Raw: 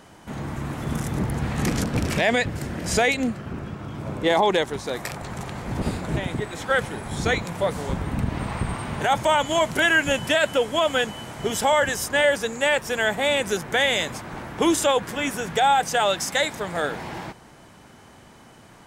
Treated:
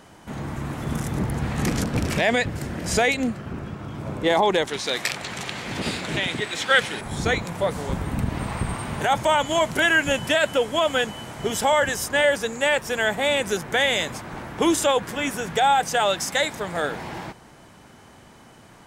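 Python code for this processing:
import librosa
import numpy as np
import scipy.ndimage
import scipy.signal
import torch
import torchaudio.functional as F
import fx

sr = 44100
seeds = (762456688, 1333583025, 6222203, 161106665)

y = fx.weighting(x, sr, curve='D', at=(4.67, 7.01))
y = fx.high_shelf(y, sr, hz=8800.0, db=7.5, at=(7.92, 9.05))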